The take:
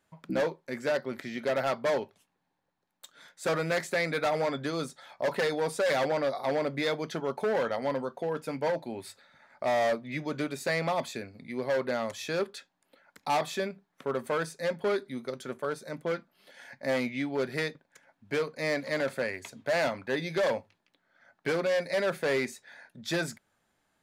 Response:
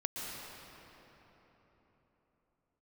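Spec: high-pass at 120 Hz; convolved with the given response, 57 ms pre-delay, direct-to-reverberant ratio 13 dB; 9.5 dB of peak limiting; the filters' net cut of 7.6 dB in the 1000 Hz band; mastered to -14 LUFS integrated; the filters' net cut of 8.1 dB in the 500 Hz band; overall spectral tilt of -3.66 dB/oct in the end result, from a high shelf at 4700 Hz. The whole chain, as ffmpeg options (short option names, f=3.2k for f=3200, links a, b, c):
-filter_complex "[0:a]highpass=120,equalizer=f=500:t=o:g=-7.5,equalizer=f=1k:t=o:g=-8,highshelf=f=4.7k:g=5.5,alimiter=level_in=2.5dB:limit=-24dB:level=0:latency=1,volume=-2.5dB,asplit=2[a][b];[1:a]atrim=start_sample=2205,adelay=57[c];[b][c]afir=irnorm=-1:irlink=0,volume=-16dB[d];[a][d]amix=inputs=2:normalize=0,volume=24.5dB"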